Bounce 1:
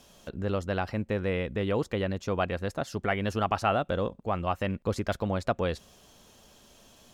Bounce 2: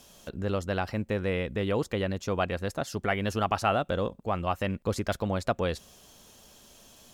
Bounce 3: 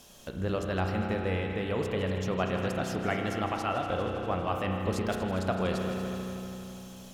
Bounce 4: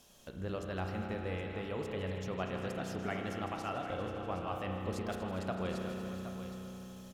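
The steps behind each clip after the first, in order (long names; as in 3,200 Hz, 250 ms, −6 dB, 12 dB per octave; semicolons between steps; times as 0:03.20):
high-shelf EQ 5,600 Hz +7 dB
echo machine with several playback heads 80 ms, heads second and third, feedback 63%, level −12.5 dB; speech leveller within 4 dB 0.5 s; spring reverb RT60 2.9 s, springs 32 ms, chirp 20 ms, DRR 2.5 dB; level −3.5 dB
single-tap delay 768 ms −11 dB; level −8 dB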